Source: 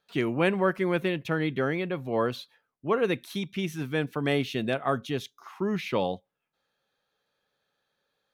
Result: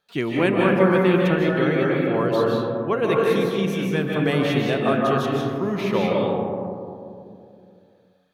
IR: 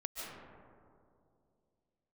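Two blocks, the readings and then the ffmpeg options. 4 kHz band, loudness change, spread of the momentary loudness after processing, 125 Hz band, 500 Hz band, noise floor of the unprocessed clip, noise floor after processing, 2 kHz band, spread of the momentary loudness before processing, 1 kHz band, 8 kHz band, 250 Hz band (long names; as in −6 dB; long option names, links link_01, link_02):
+5.0 dB, +7.5 dB, 8 LU, +8.5 dB, +8.5 dB, −82 dBFS, −57 dBFS, +6.0 dB, 8 LU, +7.5 dB, can't be measured, +8.5 dB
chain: -filter_complex "[1:a]atrim=start_sample=2205,asetrate=41454,aresample=44100[link_01];[0:a][link_01]afir=irnorm=-1:irlink=0,volume=6dB"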